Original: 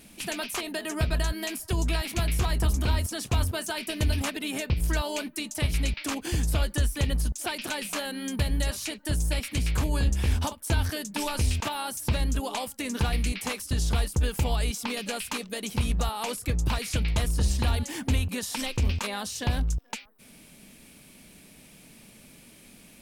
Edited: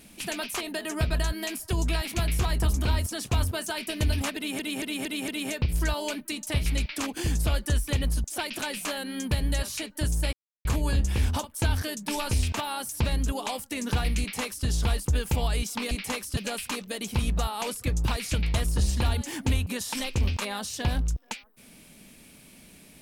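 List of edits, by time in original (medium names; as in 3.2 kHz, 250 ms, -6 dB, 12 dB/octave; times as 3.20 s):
4.36 s: stutter 0.23 s, 5 plays
9.41–9.73 s: mute
13.28–13.74 s: copy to 14.99 s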